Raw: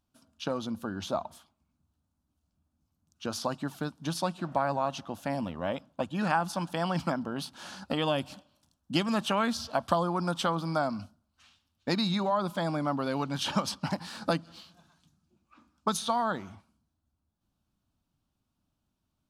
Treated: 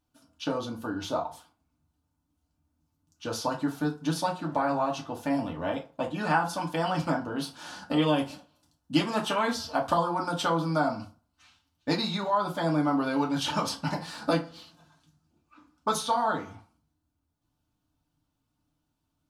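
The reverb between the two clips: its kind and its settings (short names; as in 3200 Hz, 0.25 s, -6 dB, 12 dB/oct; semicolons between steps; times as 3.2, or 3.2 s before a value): FDN reverb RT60 0.34 s, low-frequency decay 0.75×, high-frequency decay 0.65×, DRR -1.5 dB; gain -1.5 dB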